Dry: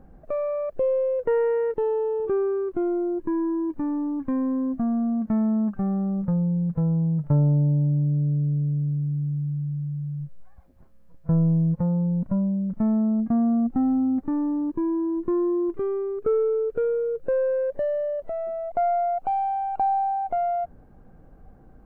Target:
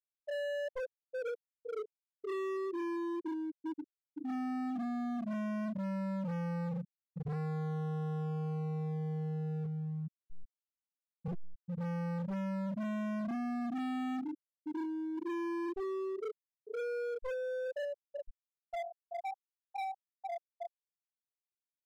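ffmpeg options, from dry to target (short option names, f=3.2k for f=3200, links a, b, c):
-af "afftfilt=real='re':imag='-im':win_size=4096:overlap=0.75,afftfilt=real='re*gte(hypot(re,im),0.224)':imag='im*gte(hypot(re,im),0.224)':win_size=1024:overlap=0.75,asoftclip=type=hard:threshold=-36.5dB,volume=1dB"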